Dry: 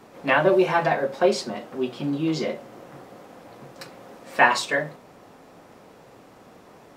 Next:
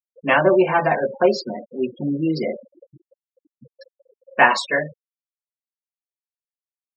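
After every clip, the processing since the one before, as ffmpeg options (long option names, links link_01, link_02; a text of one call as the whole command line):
ffmpeg -i in.wav -af "afftfilt=real='re*gte(hypot(re,im),0.0501)':imag='im*gte(hypot(re,im),0.0501)':win_size=1024:overlap=0.75,volume=3dB" out.wav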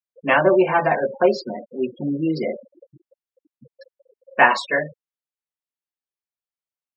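ffmpeg -i in.wav -af "bass=frequency=250:gain=-2,treble=frequency=4000:gain=-6" out.wav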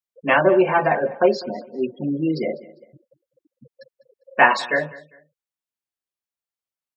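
ffmpeg -i in.wav -af "aecho=1:1:200|400:0.1|0.03" out.wav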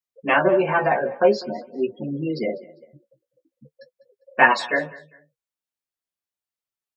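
ffmpeg -i in.wav -af "flanger=delay=7.6:depth=8.8:regen=23:speed=0.45:shape=triangular,volume=2.5dB" out.wav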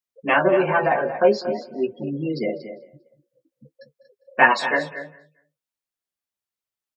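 ffmpeg -i in.wav -af "aecho=1:1:234:0.251" out.wav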